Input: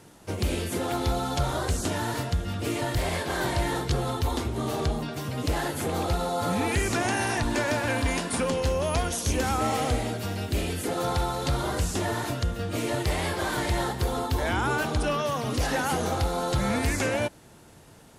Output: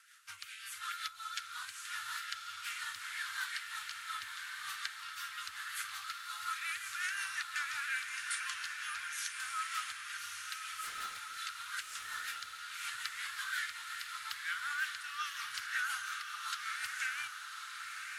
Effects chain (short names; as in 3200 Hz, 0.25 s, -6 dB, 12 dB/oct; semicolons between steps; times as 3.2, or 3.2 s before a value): Chebyshev band-stop 110–1300 Hz, order 4; low shelf 320 Hz +4.5 dB; compressor 6:1, threshold -31 dBFS, peak gain reduction 13 dB; LFO high-pass sine 2.3 Hz 780–1700 Hz; 10.75–11.37 hard clip -36.5 dBFS, distortion -20 dB; rotary speaker horn 5.5 Hz; diffused feedback echo 1.175 s, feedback 46%, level -4.5 dB; gain -3 dB